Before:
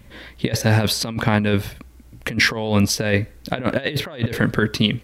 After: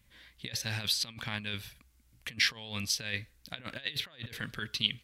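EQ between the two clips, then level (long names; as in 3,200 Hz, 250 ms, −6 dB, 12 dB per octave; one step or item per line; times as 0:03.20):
dynamic equaliser 3,400 Hz, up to +8 dB, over −37 dBFS, Q 1
guitar amp tone stack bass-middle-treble 5-5-5
−6.0 dB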